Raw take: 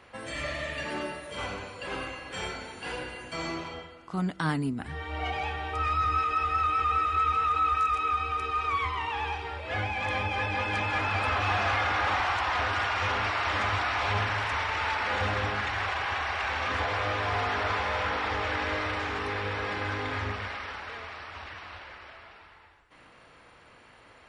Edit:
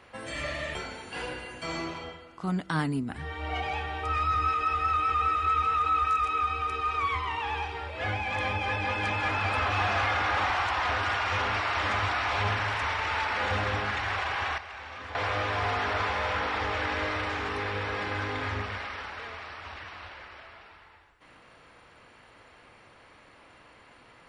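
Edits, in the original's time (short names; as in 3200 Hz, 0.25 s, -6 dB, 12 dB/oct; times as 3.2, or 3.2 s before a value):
0.75–2.45 cut
16.28–16.85 gain -11.5 dB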